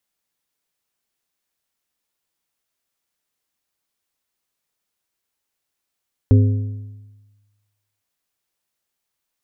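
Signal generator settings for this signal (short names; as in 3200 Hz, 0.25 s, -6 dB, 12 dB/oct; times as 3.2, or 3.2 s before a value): metal hit plate, length 1.71 s, lowest mode 103 Hz, modes 4, decay 1.30 s, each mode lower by 7.5 dB, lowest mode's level -7 dB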